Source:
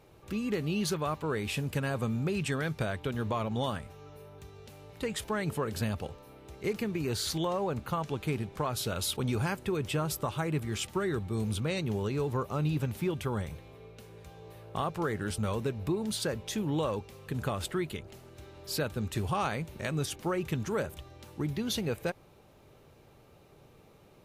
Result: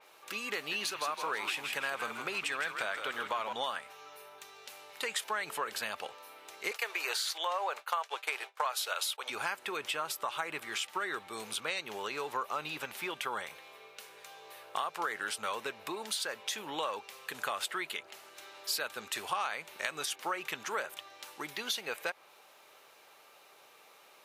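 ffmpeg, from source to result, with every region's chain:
-filter_complex "[0:a]asettb=1/sr,asplit=3[a][b][c];[a]atrim=end=0.554[d];[b]atrim=start=0.55:end=3.53,asetpts=PTS-STARTPTS,afade=t=in:d=0.004:c=qsin,afade=t=out:st=2.976:d=0.004:c=qsin,aeval=exprs='sgn(val(0))*max(abs(val(0))-0.00106,0)':c=same,asplit=7[e][f][g][h][i][j][k];[f]adelay=161,afreqshift=-95,volume=-7.5dB[l];[g]adelay=322,afreqshift=-190,volume=-13.3dB[m];[h]adelay=483,afreqshift=-285,volume=-19.2dB[n];[i]adelay=644,afreqshift=-380,volume=-25dB[o];[j]adelay=805,afreqshift=-475,volume=-30.9dB[p];[k]adelay=966,afreqshift=-570,volume=-36.7dB[q];[e][l][m][n][o][p][q]amix=inputs=7:normalize=0,atrim=end_sample=131418[r];[c]atrim=start=3.526[s];[d][r]acrossfade=d=0.004:c1=hsin:c2=qsin[t];[t][s]acrossfade=d=0.004:c1=qsin:c2=hsin,asettb=1/sr,asplit=3[u][v][w];[u]atrim=end=6.714[x];[v]atrim=start=6.71:end=9.3,asetpts=PTS-STARTPTS,afade=t=in:d=0.004:c=qsin,afade=t=out:st=2.586:d=0.004:c=qsin,agate=range=-33dB:threshold=-34dB:ratio=3:release=100:detection=peak,highpass=f=470:w=0.5412,highpass=f=470:w=1.3066,acontrast=53[y];[w]atrim=start=9.296[z];[x][y]acrossfade=d=0.004:c1=hsin:c2=qsin[aa];[aa][z]acrossfade=d=0.004:c1=qsin:c2=hsin,highpass=1k,acompressor=threshold=-38dB:ratio=6,adynamicequalizer=threshold=0.00126:dfrequency=4200:dqfactor=0.7:tfrequency=4200:tqfactor=0.7:attack=5:release=100:ratio=0.375:range=3:mode=cutabove:tftype=highshelf,volume=8dB"

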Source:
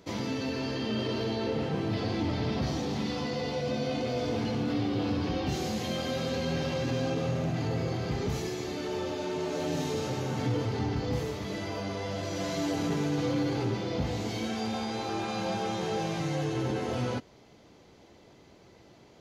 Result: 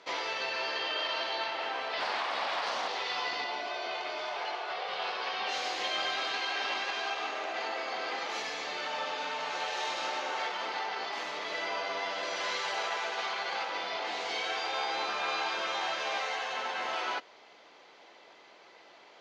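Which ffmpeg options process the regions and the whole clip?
-filter_complex "[0:a]asettb=1/sr,asplit=3[a][b][c];[a]atrim=end=2.004[d];[b]atrim=start=2:end=2.88,asetpts=PTS-STARTPTS,afade=t=in:d=0.004:c=qsin,afade=t=out:st=0.876:d=0.004:c=qsin,equalizer=f=200:t=o:w=1.1:g=9,aeval=exprs='abs(val(0))':c=same[e];[c]atrim=start=2.876[f];[d][e]acrossfade=d=0.004:c1=hsin:c2=qsin[g];[g][f]acrossfade=d=0.004:c1=qsin:c2=hsin,asettb=1/sr,asplit=3[h][i][j];[h]atrim=end=3.444[k];[i]atrim=start=3.44:end=4.88,asetpts=PTS-STARTPTS,afade=t=in:d=0.004:c=qsin,afade=t=out:st=1.436:d=0.004:c=qsin,highpass=43,tiltshelf=f=970:g=4.5[l];[j]atrim=start=4.876[m];[k][l]acrossfade=d=0.004:c1=hsin:c2=qsin[n];[n][m]acrossfade=d=0.004:c1=qsin:c2=hsin,lowpass=3.8k,afftfilt=real='re*lt(hypot(re,im),0.112)':imag='im*lt(hypot(re,im),0.112)':win_size=1024:overlap=0.75,highpass=830,volume=8dB"

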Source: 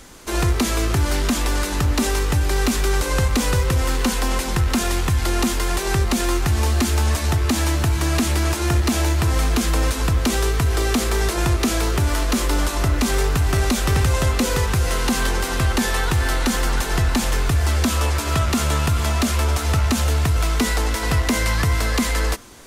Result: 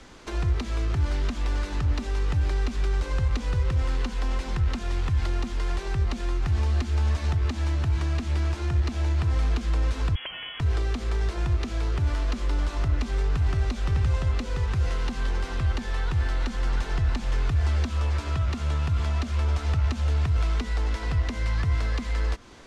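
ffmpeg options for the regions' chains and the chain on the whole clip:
-filter_complex "[0:a]asettb=1/sr,asplit=3[a][b][c];[a]atrim=end=10.154[d];[b]atrim=start=10.15:end=10.6,asetpts=PTS-STARTPTS,afade=t=in:d=0.004:c=qsin,afade=t=out:st=0.446:d=0.004:c=qsin,highpass=f=320:p=1,lowpass=f=2.9k:t=q:w=0.5098,lowpass=f=2.9k:t=q:w=0.6013,lowpass=f=2.9k:t=q:w=0.9,lowpass=f=2.9k:t=q:w=2.563,afreqshift=-3400[e];[c]atrim=start=10.596[f];[d][e]acrossfade=d=0.004:c1=hsin:c2=qsin[g];[g][f]acrossfade=d=0.004:c1=qsin:c2=hsin,lowpass=4.7k,acrossover=split=130[h][i];[i]acompressor=threshold=-30dB:ratio=10[j];[h][j]amix=inputs=2:normalize=0,volume=-3.5dB"

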